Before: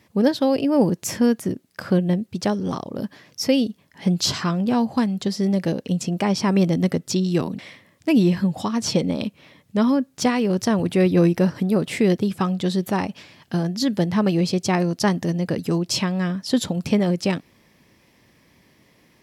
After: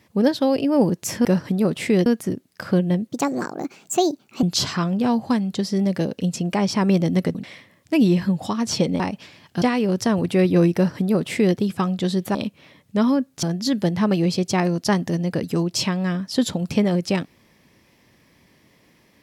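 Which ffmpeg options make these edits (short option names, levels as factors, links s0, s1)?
-filter_complex "[0:a]asplit=10[s0][s1][s2][s3][s4][s5][s6][s7][s8][s9];[s0]atrim=end=1.252[s10];[s1]atrim=start=11.358:end=12.172[s11];[s2]atrim=start=1.248:end=2.284[s12];[s3]atrim=start=2.28:end=4.1,asetpts=PTS-STARTPTS,asetrate=59976,aresample=44100,atrim=end_sample=59016,asetpts=PTS-STARTPTS[s13];[s4]atrim=start=4.096:end=7.022[s14];[s5]atrim=start=7.498:end=9.152[s15];[s6]atrim=start=12.958:end=13.582[s16];[s7]atrim=start=10.228:end=12.962[s17];[s8]atrim=start=9.148:end=10.232[s18];[s9]atrim=start=13.578[s19];[s10][s11]acrossfade=d=0.004:c1=hsin:c2=hsin[s20];[s20][s12]acrossfade=d=0.004:c1=hsin:c2=hsin[s21];[s21][s13]acrossfade=d=0.004:c1=hsin:c2=hsin[s22];[s22][s14]acrossfade=d=0.004:c1=hsin:c2=hsin[s23];[s23][s15]acrossfade=d=0.004:c1=hsin:c2=hsin[s24];[s24][s16]acrossfade=d=0.004:c1=hsin:c2=hsin[s25];[s25][s17]acrossfade=d=0.004:c1=hsin:c2=hsin[s26];[s26][s18]acrossfade=d=0.004:c1=hsin:c2=hsin[s27];[s27][s19]acrossfade=d=0.004:c1=hsin:c2=hsin"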